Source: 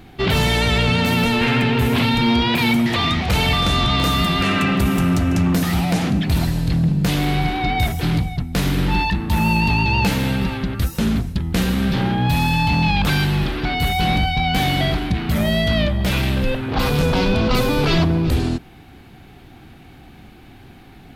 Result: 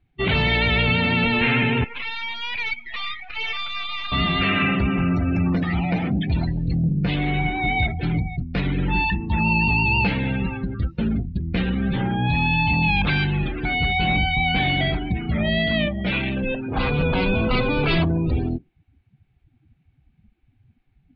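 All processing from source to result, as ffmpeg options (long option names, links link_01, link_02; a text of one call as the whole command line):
ffmpeg -i in.wav -filter_complex "[0:a]asettb=1/sr,asplit=3[link_01][link_02][link_03];[link_01]atrim=end=1.844[link_04];[link_02]atrim=start=1.84:end=4.12,asetpts=PTS-STARTPTS,afade=type=in:duration=0.004:curve=qsin,afade=type=out:start_time=2.276:duration=0.004:curve=qsin,highpass=960,aeval=exprs='max(val(0),0)':channel_layout=same[link_05];[link_03]atrim=start=4.116[link_06];[link_04][link_05]acrossfade=duration=0.004:curve1=hsin:curve2=qsin[link_07];[link_07][link_06]acrossfade=duration=0.004:curve1=qsin:curve2=hsin,asettb=1/sr,asplit=3[link_08][link_09][link_10];[link_08]atrim=end=15.584[link_11];[link_09]atrim=start=15.58:end=16.69,asetpts=PTS-STARTPTS,afade=type=in:duration=0.004:curve=qsin,afade=type=out:start_time=1.106:duration=0.004:curve=qsin,lowshelf=frequency=140:width_type=q:width=1.5:gain=-6.5,acrusher=bits=8:mode=log:mix=0:aa=0.000001[link_12];[link_10]atrim=start=16.686[link_13];[link_11][link_12]acrossfade=duration=0.004:curve1=hsin:curve2=qsin[link_14];[link_14][link_13]acrossfade=duration=0.004:curve1=qsin:curve2=hsin,afftdn=noise_reduction=29:noise_floor=-27,lowpass=frequency=4300:width=0.5412,lowpass=frequency=4300:width=1.3066,equalizer=frequency=2300:width_type=o:width=0.76:gain=7,volume=-3.5dB" out.wav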